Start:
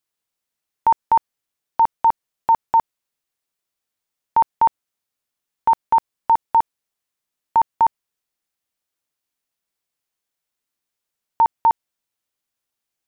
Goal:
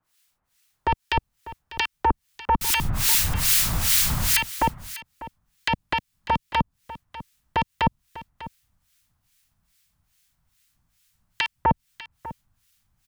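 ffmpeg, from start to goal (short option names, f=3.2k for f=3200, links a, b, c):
-filter_complex "[0:a]asettb=1/sr,asplit=3[a][b][c];[a]atrim=end=2.614[d];[b]atrim=start=2.61:end=4.41,asetpts=PTS-STARTPTS,afade=t=in:d=0.004:c=qsin,afade=t=out:st=1.796:d=0.004:c=qsin,aeval=exprs='val(0)+0.5*0.0447*sgn(val(0))':c=same[e];[c]atrim=start=4.406[f];[d][e]acrossfade=d=0.004:c1=hsin:c2=qsin[g];[g][f]acrossfade=d=0.004:c1=qsin:c2=hsin,asubboost=boost=10.5:cutoff=130,acrossover=split=300|590[h][i][j];[i]aeval=exprs='val(0)*sin(2*PI*420*n/s)':c=same[k];[j]acompressor=threshold=-29dB:ratio=6[l];[h][k][l]amix=inputs=3:normalize=0,aeval=exprs='0.266*sin(PI/2*5.01*val(0)/0.266)':c=same,acrossover=split=1400[m][n];[m]aeval=exprs='val(0)*(1-1/2+1/2*cos(2*PI*2.4*n/s))':c=same[o];[n]aeval=exprs='val(0)*(1-1/2-1/2*cos(2*PI*2.4*n/s))':c=same[p];[o][p]amix=inputs=2:normalize=0,asplit=2[q][r];[r]aecho=0:1:597:0.158[s];[q][s]amix=inputs=2:normalize=0"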